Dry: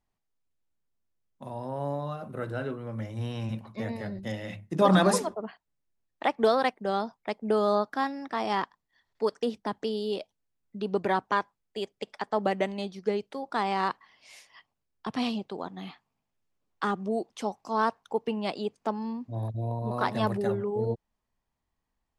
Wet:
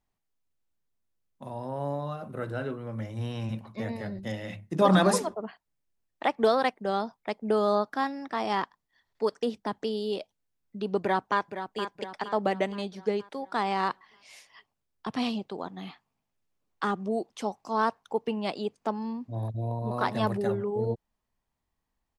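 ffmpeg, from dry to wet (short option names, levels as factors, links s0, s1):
-filter_complex "[0:a]asplit=2[s0][s1];[s1]afade=t=in:st=11.01:d=0.01,afade=t=out:st=11.81:d=0.01,aecho=0:1:470|940|1410|1880|2350|2820:0.334965|0.167483|0.0837414|0.0418707|0.0209353|0.0104677[s2];[s0][s2]amix=inputs=2:normalize=0"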